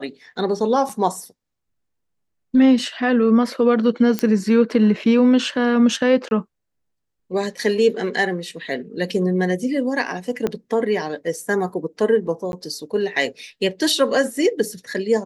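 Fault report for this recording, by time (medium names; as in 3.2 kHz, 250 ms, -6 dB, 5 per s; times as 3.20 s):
0.89 s: dropout 4.7 ms
4.19 s: pop -7 dBFS
6.29–6.31 s: dropout 21 ms
10.47 s: pop -10 dBFS
12.52–12.53 s: dropout 11 ms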